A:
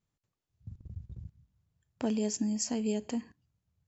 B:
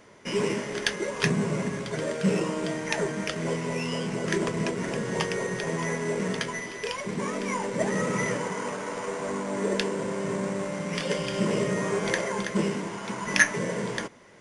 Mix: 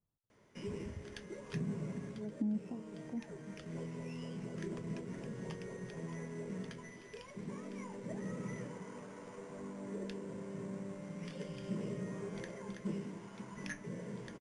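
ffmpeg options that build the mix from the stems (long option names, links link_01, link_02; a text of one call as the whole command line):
ffmpeg -i stem1.wav -i stem2.wav -filter_complex "[0:a]lowpass=frequency=1200:width=0.5412,lowpass=frequency=1200:width=1.3066,tremolo=f=1.2:d=0.91,volume=-3dB,asplit=2[link_01][link_02];[1:a]lowshelf=frequency=270:gain=7.5,adelay=300,volume=-16.5dB[link_03];[link_02]apad=whole_len=648367[link_04];[link_03][link_04]sidechaincompress=threshold=-43dB:ratio=10:attack=11:release=800[link_05];[link_01][link_05]amix=inputs=2:normalize=0,acrossover=split=420[link_06][link_07];[link_07]acompressor=threshold=-59dB:ratio=1.5[link_08];[link_06][link_08]amix=inputs=2:normalize=0" out.wav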